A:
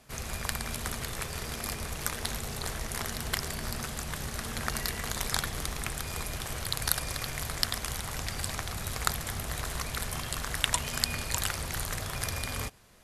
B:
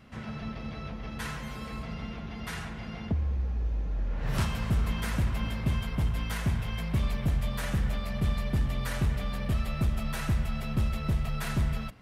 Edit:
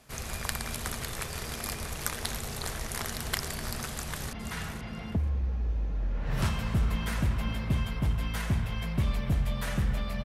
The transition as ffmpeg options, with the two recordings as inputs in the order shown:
-filter_complex "[0:a]apad=whole_dur=10.24,atrim=end=10.24,atrim=end=4.332[a];[1:a]atrim=start=2.288:end=8.2[b];[a][b]acrossfade=d=0.004:c1=hsin:c2=hsin,asplit=2[c][d];[d]afade=t=in:st=3.91:d=0.01,afade=t=out:st=4.33:d=0.01,aecho=0:1:480|960:0.375837|0.0563756[e];[c][e]amix=inputs=2:normalize=0"

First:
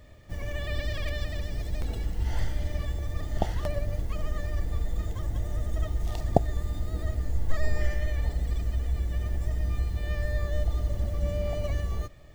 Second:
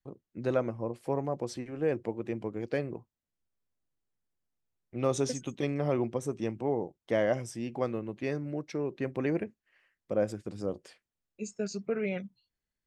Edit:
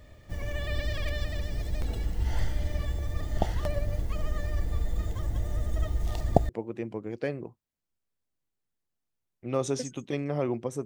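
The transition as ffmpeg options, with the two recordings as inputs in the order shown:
-filter_complex "[0:a]apad=whole_dur=10.85,atrim=end=10.85,atrim=end=6.492[a];[1:a]atrim=start=1.988:end=6.35[b];[a][b]acrossfade=d=0.004:c1=hsin:c2=hsin"

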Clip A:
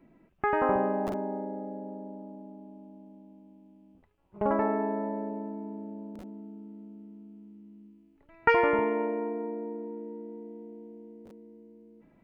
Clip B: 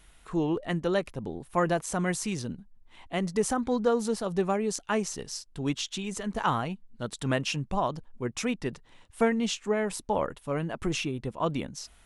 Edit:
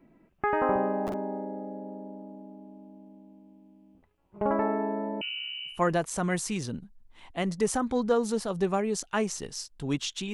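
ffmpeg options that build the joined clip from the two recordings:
-filter_complex "[0:a]asettb=1/sr,asplit=3[a][b][c];[a]atrim=end=5.214[d];[b]atrim=start=5.21:end=5.81,asetpts=PTS-STARTPTS,afade=t=in:d=0.004:c=qsin,afade=t=out:st=0.596:d=0.004:c=qsin,lowpass=f=2.7k:t=q:w=0.5098,lowpass=f=2.7k:t=q:w=0.6013,lowpass=f=2.7k:t=q:w=0.9,lowpass=f=2.7k:t=q:w=2.563,afreqshift=-3200[e];[c]atrim=start=5.806[f];[d][e]acrossfade=d=0.004:c1=hsin:c2=qsin[g];[g][f]acrossfade=d=0.004:c1=qsin:c2=hsin,apad=whole_dur=10.33,atrim=end=10.33,atrim=end=5.81,asetpts=PTS-STARTPTS[h];[1:a]atrim=start=1.41:end=6.09,asetpts=PTS-STARTPTS[i];[h][i]acrossfade=d=0.16:c1=tri:c2=tri"

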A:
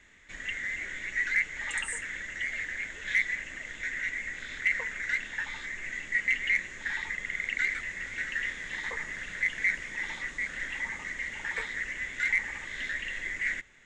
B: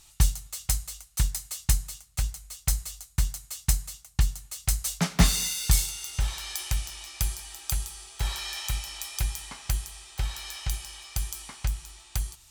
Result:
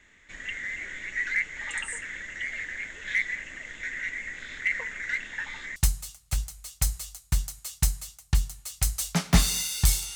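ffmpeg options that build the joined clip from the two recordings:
-filter_complex "[0:a]apad=whole_dur=10.15,atrim=end=10.15,atrim=end=5.762[a];[1:a]atrim=start=1.618:end=6.01[b];[a][b]acrossfade=d=0.004:c1=hsin:c2=hsin"

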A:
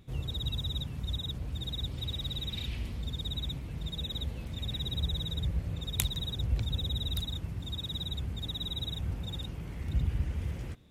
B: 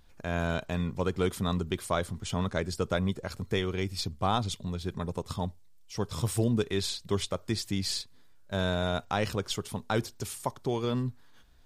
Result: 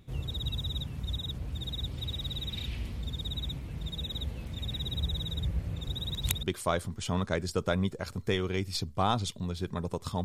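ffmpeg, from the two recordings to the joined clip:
-filter_complex "[0:a]apad=whole_dur=10.24,atrim=end=10.24,asplit=2[a][b];[a]atrim=end=5.882[c];[b]atrim=start=5.878:end=6.432,asetpts=PTS-STARTPTS,areverse[d];[1:a]atrim=start=1.668:end=5.48[e];[c][d]acrossfade=d=0.004:c1=hsin:c2=hsin[f];[f][e]acrossfade=d=0.004:c1=hsin:c2=hsin"

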